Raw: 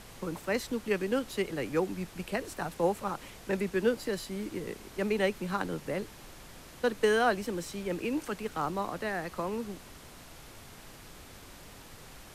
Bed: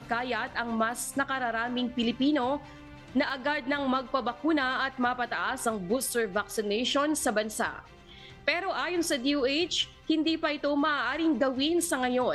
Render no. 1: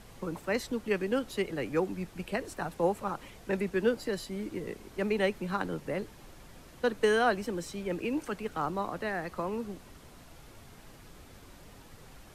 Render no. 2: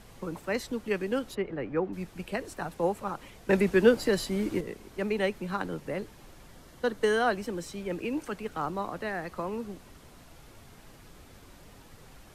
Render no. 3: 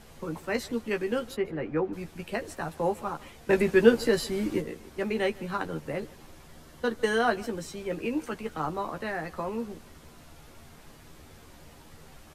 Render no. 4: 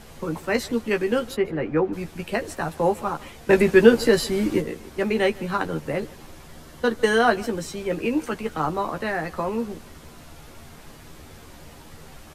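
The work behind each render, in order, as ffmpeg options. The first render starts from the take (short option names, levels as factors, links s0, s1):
-af "afftdn=nr=6:nf=-50"
-filter_complex "[0:a]asplit=3[s0][s1][s2];[s0]afade=t=out:st=1.34:d=0.02[s3];[s1]lowpass=1900,afade=t=in:st=1.34:d=0.02,afade=t=out:st=1.92:d=0.02[s4];[s2]afade=t=in:st=1.92:d=0.02[s5];[s3][s4][s5]amix=inputs=3:normalize=0,asettb=1/sr,asplit=3[s6][s7][s8];[s6]atrim=end=3.494[s9];[s7]atrim=start=3.49:end=4.61,asetpts=PTS-STARTPTS,afade=t=in:d=0.004:c=qsin,afade=t=out:st=1.116:d=0.004:c=qsin,acontrast=87[s10];[s8]atrim=start=4.606[s11];[s9][s10]acrossfade=d=0.004:c1=hsin:c2=qsin[s12];[s12][s11]acrossfade=d=0.004:c1=qsin:c2=hsin,asettb=1/sr,asplit=3[s13][s14][s15];[s13]atrim=end=6.554[s16];[s14]atrim=start=6.55:end=7.28,asetpts=PTS-STARTPTS,afade=t=in:d=0.004:c=qsin,afade=t=out:st=0.726:d=0.004:c=qsin,bandreject=f=2500:w=8.8[s17];[s15]atrim=start=7.276[s18];[s16][s17]acrossfade=d=0.004:c1=hsin:c2=qsin[s19];[s19][s18]acrossfade=d=0.004:c1=qsin:c2=hsin"
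-filter_complex "[0:a]asplit=2[s0][s1];[s1]adelay=13,volume=0.562[s2];[s0][s2]amix=inputs=2:normalize=0,aecho=1:1:154:0.075"
-af "volume=2.11,alimiter=limit=0.794:level=0:latency=1"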